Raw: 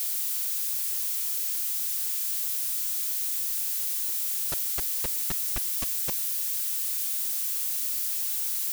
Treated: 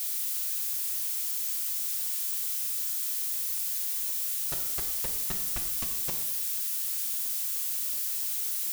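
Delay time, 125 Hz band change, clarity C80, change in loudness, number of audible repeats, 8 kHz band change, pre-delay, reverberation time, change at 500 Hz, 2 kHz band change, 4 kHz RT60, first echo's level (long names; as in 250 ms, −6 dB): no echo audible, −1.0 dB, 8.5 dB, −2.0 dB, no echo audible, −2.0 dB, 3 ms, 1.1 s, −1.5 dB, −2.0 dB, 0.90 s, no echo audible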